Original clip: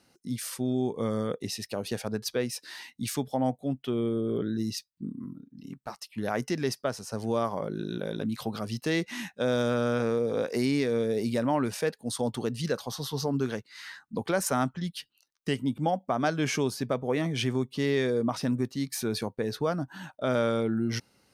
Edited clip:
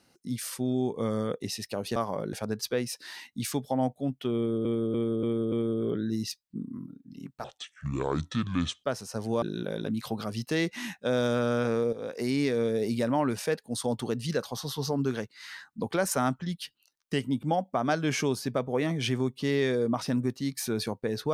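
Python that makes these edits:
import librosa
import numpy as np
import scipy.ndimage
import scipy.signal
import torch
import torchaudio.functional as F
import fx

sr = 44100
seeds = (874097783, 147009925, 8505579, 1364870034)

y = fx.edit(x, sr, fx.repeat(start_s=3.99, length_s=0.29, count=5),
    fx.speed_span(start_s=5.91, length_s=0.91, speed=0.65),
    fx.move(start_s=7.4, length_s=0.37, to_s=1.96),
    fx.fade_in_from(start_s=10.28, length_s=0.5, floor_db=-12.0), tone=tone)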